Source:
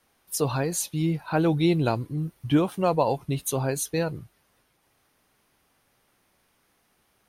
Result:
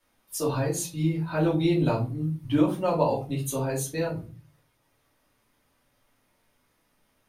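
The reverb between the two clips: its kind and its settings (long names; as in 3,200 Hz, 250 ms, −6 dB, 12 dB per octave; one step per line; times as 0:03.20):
rectangular room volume 160 cubic metres, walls furnished, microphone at 2.7 metres
level −8.5 dB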